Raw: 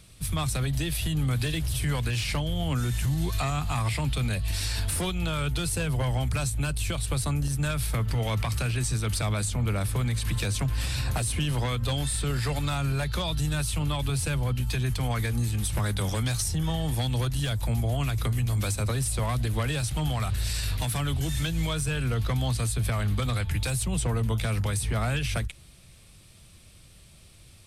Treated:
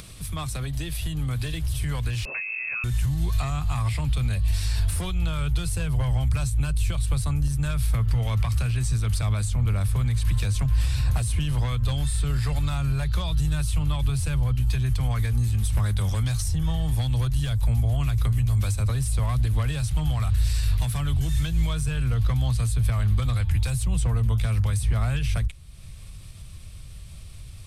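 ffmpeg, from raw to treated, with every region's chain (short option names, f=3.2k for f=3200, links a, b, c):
-filter_complex "[0:a]asettb=1/sr,asplit=3[a][b][c];[a]atrim=end=2.254[d];[b]atrim=start=2.25:end=2.84,asetpts=PTS-STARTPTS,afade=t=in:d=0.004:c=qsin,afade=t=out:st=0.586:d=0.004:c=qsin,lowpass=f=2.3k:t=q:w=0.5098,lowpass=f=2.3k:t=q:w=0.6013,lowpass=f=2.3k:t=q:w=0.9,lowpass=f=2.3k:t=q:w=2.563,afreqshift=-2700,highpass=f=100:w=0.5412,highpass=f=100:w=1.3066,asubboost=boost=6:cutoff=200[e];[c]atrim=start=2.836[f];[d][e]acrossfade=d=0.004:c1=hsin:c2=qsin[g];[g][f]acrossfade=d=0.004:c1=qsin:c2=hsin,asubboost=boost=4:cutoff=130,acompressor=mode=upward:threshold=-28dB:ratio=2.5,equalizer=f=1.1k:w=7.4:g=3.5,volume=-3.5dB"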